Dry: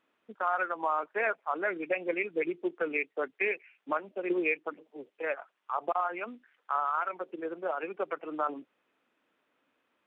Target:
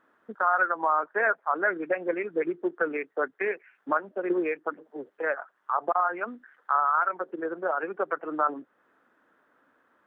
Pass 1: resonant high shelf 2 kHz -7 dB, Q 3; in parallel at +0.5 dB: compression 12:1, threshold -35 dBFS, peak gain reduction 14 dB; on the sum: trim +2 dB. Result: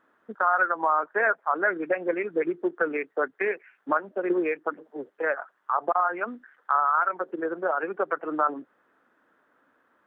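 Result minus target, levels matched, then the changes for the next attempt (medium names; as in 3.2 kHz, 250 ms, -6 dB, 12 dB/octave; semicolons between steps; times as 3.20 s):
compression: peak gain reduction -8.5 dB
change: compression 12:1, threshold -44 dBFS, peak gain reduction 22.5 dB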